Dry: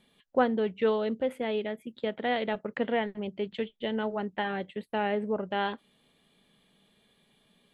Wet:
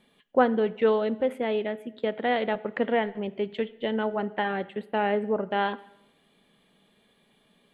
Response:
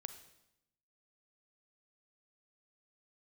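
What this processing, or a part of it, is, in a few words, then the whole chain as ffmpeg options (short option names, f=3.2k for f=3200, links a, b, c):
filtered reverb send: -filter_complex "[0:a]asplit=2[a][b];[b]highpass=160,lowpass=3k[c];[1:a]atrim=start_sample=2205[d];[c][d]afir=irnorm=-1:irlink=0,volume=-0.5dB[e];[a][e]amix=inputs=2:normalize=0"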